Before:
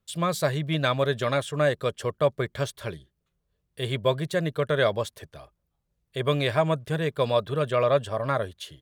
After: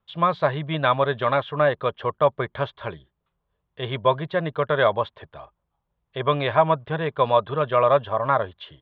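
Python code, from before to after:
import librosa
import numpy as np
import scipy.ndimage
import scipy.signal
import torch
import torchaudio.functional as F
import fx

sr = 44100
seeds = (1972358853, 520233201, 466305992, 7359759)

y = scipy.signal.sosfilt(scipy.signal.cheby1(4, 1.0, 3500.0, 'lowpass', fs=sr, output='sos'), x)
y = fx.peak_eq(y, sr, hz=940.0, db=11.5, octaves=0.98)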